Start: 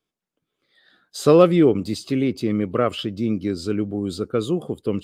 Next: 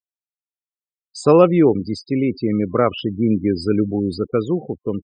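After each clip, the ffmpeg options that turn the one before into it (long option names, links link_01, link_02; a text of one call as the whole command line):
ffmpeg -i in.wav -af "afftfilt=real='re*gte(hypot(re,im),0.0316)':imag='im*gte(hypot(re,im),0.0316)':win_size=1024:overlap=0.75,superequalizer=9b=2:13b=0.316,dynaudnorm=framelen=350:gausssize=7:maxgain=11.5dB" out.wav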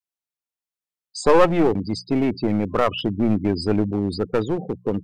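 ffmpeg -i in.wav -af "adynamicequalizer=threshold=0.0562:dfrequency=350:dqfactor=0.77:tfrequency=350:tqfactor=0.77:attack=5:release=100:ratio=0.375:range=3:mode=cutabove:tftype=bell,aeval=exprs='clip(val(0),-1,0.0891)':channel_layout=same,bandreject=frequency=60:width_type=h:width=6,bandreject=frequency=120:width_type=h:width=6,bandreject=frequency=180:width_type=h:width=6,volume=1.5dB" out.wav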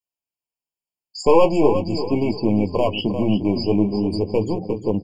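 ffmpeg -i in.wav -filter_complex "[0:a]asplit=2[link_01][link_02];[link_02]aecho=0:1:351|702|1053|1404:0.316|0.114|0.041|0.0148[link_03];[link_01][link_03]amix=inputs=2:normalize=0,flanger=delay=9.3:depth=6.8:regen=-37:speed=0.42:shape=sinusoidal,afftfilt=real='re*eq(mod(floor(b*sr/1024/1100),2),0)':imag='im*eq(mod(floor(b*sr/1024/1100),2),0)':win_size=1024:overlap=0.75,volume=5dB" out.wav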